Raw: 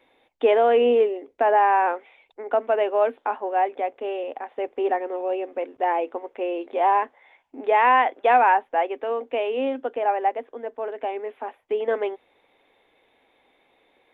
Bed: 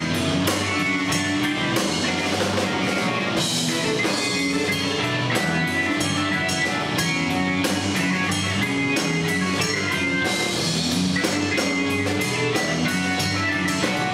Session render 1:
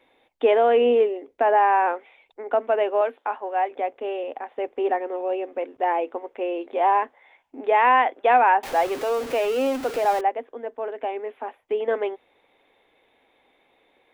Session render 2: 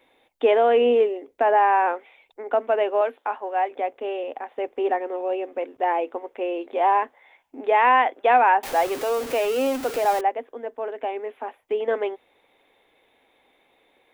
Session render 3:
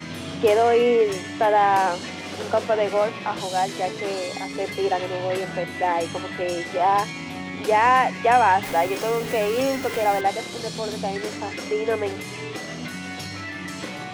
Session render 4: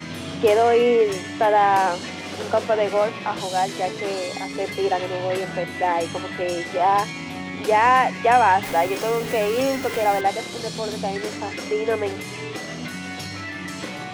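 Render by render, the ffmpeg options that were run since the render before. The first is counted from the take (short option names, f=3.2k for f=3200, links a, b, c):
-filter_complex "[0:a]asettb=1/sr,asplit=3[a][b][c];[a]atrim=end=3.014[d];[b]atrim=start=3.01:end=3.71,asetpts=PTS-STARTPTS,afade=t=in:d=0.004:c=qsin,afade=t=out:st=0.696:d=0.004:c=qsin,highpass=f=510:p=1[e];[c]atrim=start=3.706[f];[d][e]acrossfade=d=0.004:c1=hsin:c2=qsin[g];[g][f]acrossfade=d=0.004:c1=qsin:c2=hsin,asettb=1/sr,asplit=3[h][i][j];[h]atrim=end=8.634[k];[i]atrim=start=8.63:end=10.21,asetpts=PTS-STARTPTS,afade=t=in:d=0.004:c=qsin,afade=t=out:st=1.576:d=0.004:c=qsin,aeval=exprs='val(0)+0.5*0.0376*sgn(val(0))':c=same[l];[j]atrim=start=10.206[m];[k][l]acrossfade=d=0.004:c1=hsin:c2=qsin[n];[n][m]acrossfade=d=0.004:c1=qsin:c2=hsin"
-af "highshelf=f=6.8k:g=7.5"
-filter_complex "[1:a]volume=-10.5dB[a];[0:a][a]amix=inputs=2:normalize=0"
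-af "volume=1dB"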